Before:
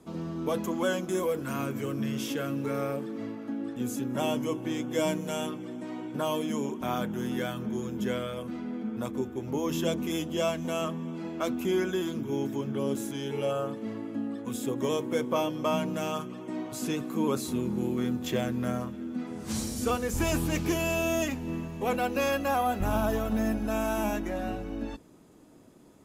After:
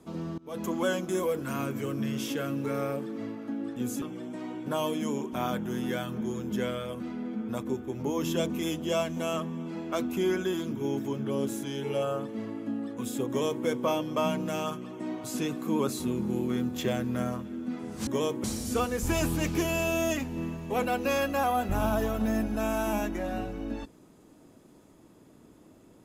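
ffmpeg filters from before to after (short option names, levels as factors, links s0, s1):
-filter_complex "[0:a]asplit=5[s0][s1][s2][s3][s4];[s0]atrim=end=0.38,asetpts=PTS-STARTPTS,afade=t=out:st=0.376:d=0.004:c=hsin:silence=0.0668344[s5];[s1]atrim=start=0.38:end=4.022,asetpts=PTS-STARTPTS,afade=t=in:d=0.26:c=qua:silence=0.0668344[s6];[s2]atrim=start=5.498:end=19.552[s7];[s3]atrim=start=14.758:end=15.132[s8];[s4]atrim=start=19.548[s9];[s5][s6]concat=n=2:v=0:a=1[s10];[s10][s7]acrossfade=d=0.004:c1=hsin:c2=hsin[s11];[s11][s8]acrossfade=d=0.004:c1=hsin:c2=hsin[s12];[s12][s9]acrossfade=d=0.004:c1=hsin:c2=hsin"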